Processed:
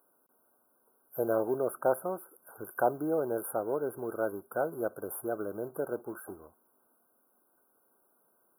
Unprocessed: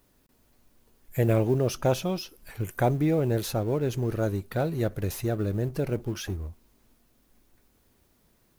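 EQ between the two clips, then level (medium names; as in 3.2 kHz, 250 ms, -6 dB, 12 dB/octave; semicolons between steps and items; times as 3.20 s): high-pass 460 Hz 12 dB/octave; brick-wall FIR band-stop 1.6–9.4 kHz; 0.0 dB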